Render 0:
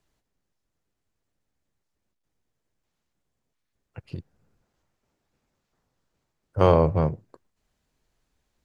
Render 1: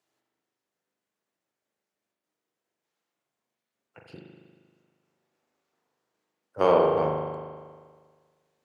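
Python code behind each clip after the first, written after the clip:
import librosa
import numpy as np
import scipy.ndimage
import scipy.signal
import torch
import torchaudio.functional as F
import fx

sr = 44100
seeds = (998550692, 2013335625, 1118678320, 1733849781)

y = scipy.signal.sosfilt(scipy.signal.butter(2, 300.0, 'highpass', fs=sr, output='sos'), x)
y = fx.rev_spring(y, sr, rt60_s=1.7, pass_ms=(39,), chirp_ms=55, drr_db=0.0)
y = F.gain(torch.from_numpy(y), -2.5).numpy()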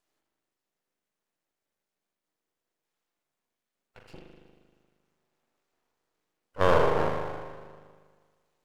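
y = np.maximum(x, 0.0)
y = F.gain(torch.from_numpy(y), 2.5).numpy()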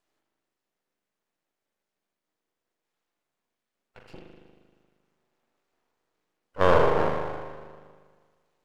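y = fx.high_shelf(x, sr, hz=5700.0, db=-6.5)
y = fx.hum_notches(y, sr, base_hz=50, count=3)
y = F.gain(torch.from_numpy(y), 2.5).numpy()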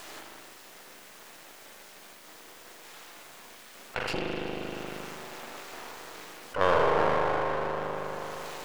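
y = fx.low_shelf(x, sr, hz=420.0, db=-9.0)
y = fx.env_flatten(y, sr, amount_pct=70)
y = F.gain(torch.from_numpy(y), -2.0).numpy()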